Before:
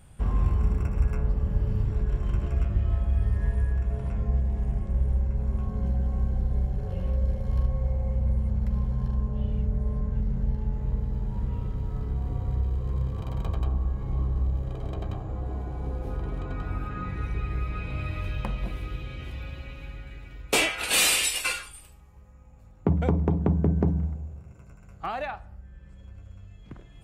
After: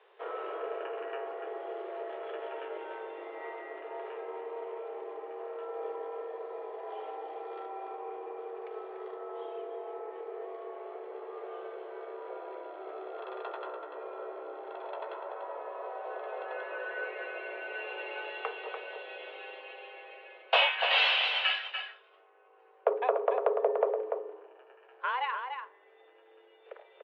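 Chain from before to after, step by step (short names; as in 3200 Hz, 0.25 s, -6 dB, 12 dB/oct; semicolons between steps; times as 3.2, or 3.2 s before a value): outdoor echo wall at 50 m, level -6 dB; mistuned SSB +250 Hz 200–3200 Hz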